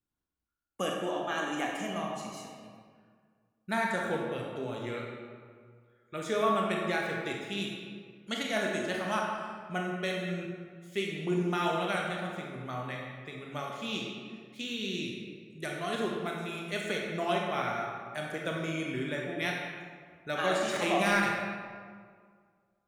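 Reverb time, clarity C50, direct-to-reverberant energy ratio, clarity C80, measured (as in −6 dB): 1.9 s, 0.5 dB, −1.5 dB, 2.5 dB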